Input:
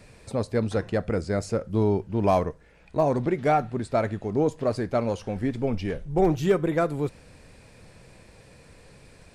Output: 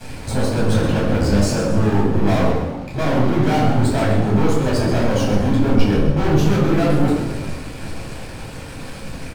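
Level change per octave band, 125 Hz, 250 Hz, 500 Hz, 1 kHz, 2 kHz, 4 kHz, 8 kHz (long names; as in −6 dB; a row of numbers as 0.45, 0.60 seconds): +11.5, +10.0, +4.0, +4.5, +9.5, +14.5, +14.0 decibels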